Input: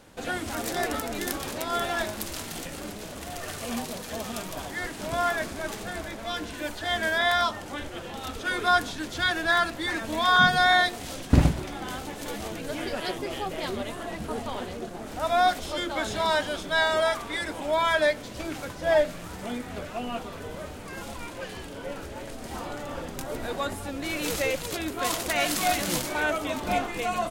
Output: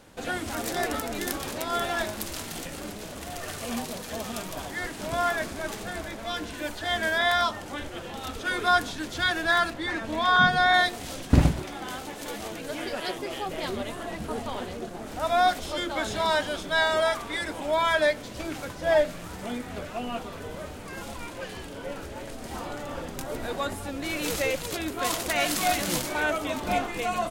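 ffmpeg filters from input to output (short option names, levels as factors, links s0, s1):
-filter_complex "[0:a]asettb=1/sr,asplit=3[s0][s1][s2];[s0]atrim=end=9.734[s3];[s1]atrim=start=9.73:end=10.74,asetpts=PTS-STARTPTS,afade=t=in:d=0.004:c=qsin,afade=t=out:st=1.006:d=0.004:c=qsin,lowpass=f=3600:p=1[s4];[s2]atrim=start=10.736[s5];[s3][s4]acrossfade=d=0.004:c1=hsin:c2=qsin[s6];[s6][s5]acrossfade=d=0.004:c1=qsin:c2=hsin,asettb=1/sr,asplit=3[s7][s8][s9];[s7]atrim=end=11.624[s10];[s8]atrim=start=11.62:end=13.49,asetpts=PTS-STARTPTS,afade=t=in:d=0.004:c=qsin,afade=t=out:st=1.866:d=0.004:c=qsin,lowshelf=f=170:g=-7.5[s11];[s9]atrim=start=13.486[s12];[s10][s11]acrossfade=d=0.004:c1=hsin:c2=qsin[s13];[s13][s12]acrossfade=d=0.004:c1=qsin:c2=hsin"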